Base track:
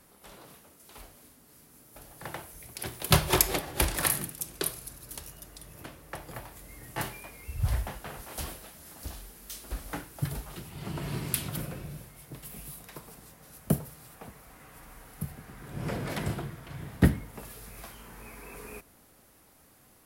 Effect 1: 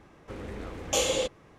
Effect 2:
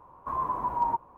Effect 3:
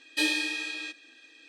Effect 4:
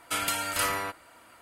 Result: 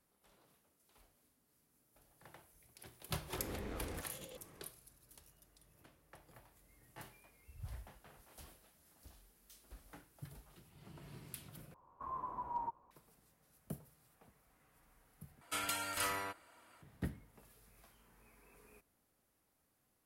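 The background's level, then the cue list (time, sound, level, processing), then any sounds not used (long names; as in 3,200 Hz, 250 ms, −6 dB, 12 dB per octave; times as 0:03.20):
base track −19.5 dB
0:03.09: mix in 1 −10.5 dB + compressor whose output falls as the input rises −38 dBFS
0:11.74: overwrite with 2 −13.5 dB
0:15.41: overwrite with 4 −9.5 dB
not used: 3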